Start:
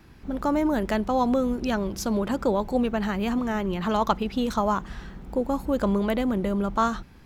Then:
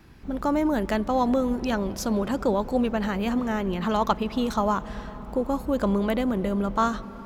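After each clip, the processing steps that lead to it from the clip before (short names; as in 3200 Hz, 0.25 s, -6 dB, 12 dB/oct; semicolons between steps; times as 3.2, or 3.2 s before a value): on a send at -15 dB: LPF 1800 Hz 6 dB/oct + reverb RT60 5.7 s, pre-delay 0.173 s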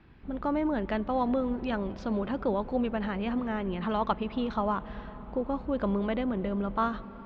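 LPF 3600 Hz 24 dB/oct; gain -5 dB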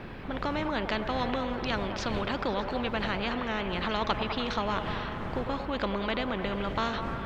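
wind noise 150 Hz -41 dBFS; delay with a stepping band-pass 0.101 s, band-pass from 570 Hz, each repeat 0.7 oct, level -9 dB; spectral compressor 2:1; gain +1 dB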